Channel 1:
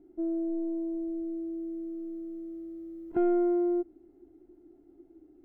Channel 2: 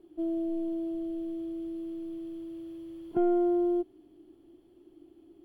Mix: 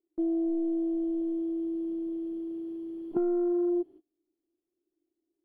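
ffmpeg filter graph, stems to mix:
-filter_complex "[0:a]afwtdn=0.0158,volume=-1dB[a];[1:a]equalizer=f=450:t=o:w=2.2:g=11,volume=-8.5dB[b];[a][b]amix=inputs=2:normalize=0,agate=range=-28dB:threshold=-45dB:ratio=16:detection=peak,acompressor=threshold=-25dB:ratio=6"

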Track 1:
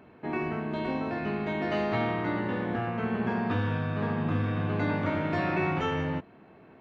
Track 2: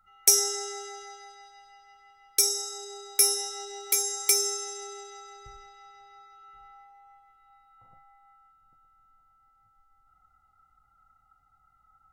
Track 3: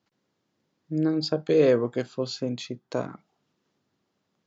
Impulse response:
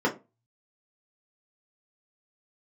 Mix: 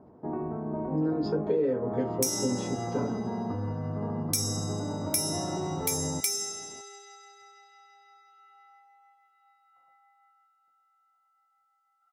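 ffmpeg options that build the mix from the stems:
-filter_complex "[0:a]volume=0.5dB[a];[1:a]highpass=760,adelay=1950,volume=-3dB,asplit=2[b][c];[c]volume=-17.5dB[d];[2:a]aecho=1:1:7.1:0.51,volume=-12dB,asplit=2[e][f];[f]volume=-6.5dB[g];[a][e]amix=inputs=2:normalize=0,lowpass=f=1k:w=0.5412,lowpass=f=1k:w=1.3066,alimiter=level_in=0.5dB:limit=-24dB:level=0:latency=1:release=94,volume=-0.5dB,volume=0dB[h];[3:a]atrim=start_sample=2205[i];[d][g]amix=inputs=2:normalize=0[j];[j][i]afir=irnorm=-1:irlink=0[k];[b][h][k]amix=inputs=3:normalize=0,acompressor=threshold=-23dB:ratio=10"

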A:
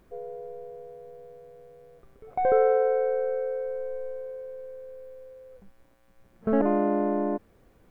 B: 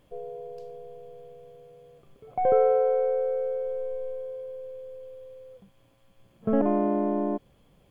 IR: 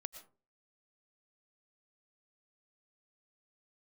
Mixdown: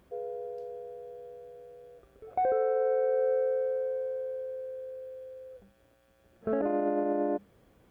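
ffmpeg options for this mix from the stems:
-filter_complex "[0:a]volume=-2dB[a];[1:a]bandreject=f=50:t=h:w=6,bandreject=f=100:t=h:w=6,bandreject=f=150:t=h:w=6,bandreject=f=200:t=h:w=6,volume=-1,volume=-8dB[b];[a][b]amix=inputs=2:normalize=0,highpass=44,alimiter=limit=-20.5dB:level=0:latency=1:release=60"

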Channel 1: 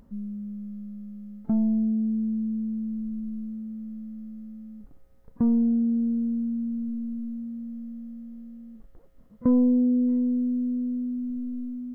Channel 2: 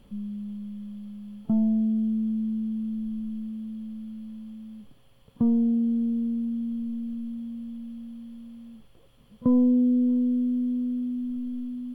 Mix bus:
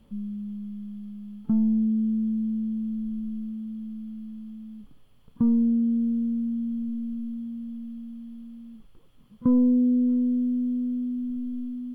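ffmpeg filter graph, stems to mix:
-filter_complex "[0:a]adynamicequalizer=threshold=0.00501:dfrequency=540:dqfactor=1.8:tfrequency=540:tqfactor=1.8:attack=5:release=100:ratio=0.375:range=2.5:mode=boostabove:tftype=bell,volume=-4dB[a];[1:a]volume=-5dB[b];[a][b]amix=inputs=2:normalize=0"

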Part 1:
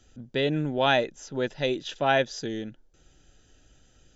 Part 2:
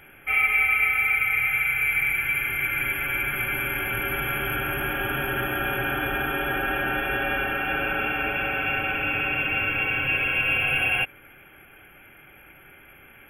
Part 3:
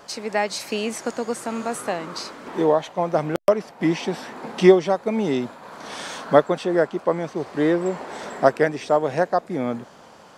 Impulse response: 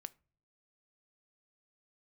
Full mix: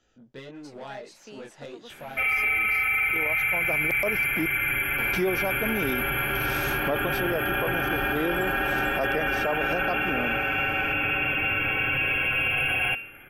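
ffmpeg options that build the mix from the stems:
-filter_complex "[0:a]acompressor=threshold=-27dB:ratio=6,asplit=2[a][b];[b]highpass=f=720:p=1,volume=16dB,asoftclip=type=tanh:threshold=-21.5dB[c];[a][c]amix=inputs=2:normalize=0,lowpass=f=1.9k:p=1,volume=-6dB,flanger=delay=16:depth=7:speed=1.6,volume=-8dB,asplit=2[d][e];[1:a]bandreject=f=229:t=h:w=4,bandreject=f=458:t=h:w=4,bandreject=f=687:t=h:w=4,bandreject=f=916:t=h:w=4,bandreject=f=1.145k:t=h:w=4,bandreject=f=1.374k:t=h:w=4,bandreject=f=1.603k:t=h:w=4,bandreject=f=1.832k:t=h:w=4,bandreject=f=2.061k:t=h:w=4,bandreject=f=2.29k:t=h:w=4,bandreject=f=2.519k:t=h:w=4,bandreject=f=2.748k:t=h:w=4,bandreject=f=2.977k:t=h:w=4,bandreject=f=3.206k:t=h:w=4,bandreject=f=3.435k:t=h:w=4,bandreject=f=3.664k:t=h:w=4,bandreject=f=3.893k:t=h:w=4,bandreject=f=4.122k:t=h:w=4,bandreject=f=4.351k:t=h:w=4,bandreject=f=4.58k:t=h:w=4,bandreject=f=4.809k:t=h:w=4,bandreject=f=5.038k:t=h:w=4,bandreject=f=5.267k:t=h:w=4,bandreject=f=5.496k:t=h:w=4,bandreject=f=5.725k:t=h:w=4,bandreject=f=5.954k:t=h:w=4,bandreject=f=6.183k:t=h:w=4,adelay=1900,volume=1dB[f];[2:a]adelay=550,volume=-5.5dB,asplit=3[g][h][i];[g]atrim=end=4.46,asetpts=PTS-STARTPTS,afade=t=out:st=4.456:d=0.004:c=hsin[j];[h]atrim=start=4.46:end=4.98,asetpts=PTS-STARTPTS,volume=0[k];[i]atrim=start=4.98,asetpts=PTS-STARTPTS,afade=t=in:d=0.004:c=hsin[l];[j][k][l]concat=n=3:v=0:a=1,asplit=2[m][n];[n]volume=-23dB[o];[e]apad=whole_len=481819[p];[m][p]sidechaincompress=threshold=-57dB:ratio=12:attack=16:release=1060[q];[3:a]atrim=start_sample=2205[r];[o][r]afir=irnorm=-1:irlink=0[s];[d][f][q][s]amix=inputs=4:normalize=0,alimiter=limit=-17dB:level=0:latency=1:release=11"

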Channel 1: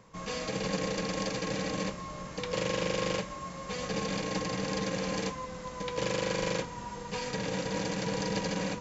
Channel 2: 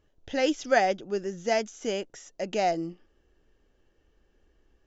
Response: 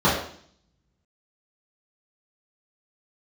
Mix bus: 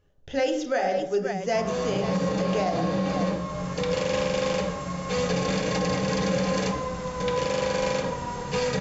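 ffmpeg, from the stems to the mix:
-filter_complex "[0:a]equalizer=f=150:w=1.5:g=-3,acontrast=51,adelay=1400,volume=0dB,asplit=2[a][b];[b]volume=-22dB[c];[1:a]volume=0dB,asplit=4[d][e][f][g];[e]volume=-22.5dB[h];[f]volume=-10dB[i];[g]apad=whole_len=450192[j];[a][j]sidechaincompress=threshold=-46dB:ratio=8:attack=16:release=585[k];[2:a]atrim=start_sample=2205[l];[c][h]amix=inputs=2:normalize=0[m];[m][l]afir=irnorm=-1:irlink=0[n];[i]aecho=0:1:528:1[o];[k][d][n][o]amix=inputs=4:normalize=0,alimiter=limit=-16dB:level=0:latency=1:release=71"

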